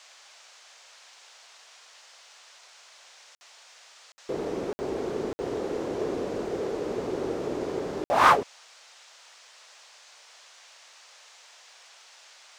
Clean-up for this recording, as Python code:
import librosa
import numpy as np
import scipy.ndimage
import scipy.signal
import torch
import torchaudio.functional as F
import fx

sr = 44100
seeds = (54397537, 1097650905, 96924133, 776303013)

y = fx.fix_interpolate(x, sr, at_s=(3.35, 4.12, 4.73, 5.33, 8.04), length_ms=60.0)
y = fx.noise_reduce(y, sr, print_start_s=9.05, print_end_s=9.55, reduce_db=26.0)